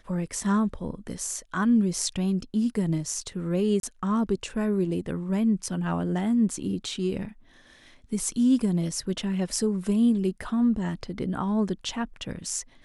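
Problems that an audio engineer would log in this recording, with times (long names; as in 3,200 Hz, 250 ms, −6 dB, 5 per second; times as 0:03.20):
0:03.80–0:03.83: drop-out 32 ms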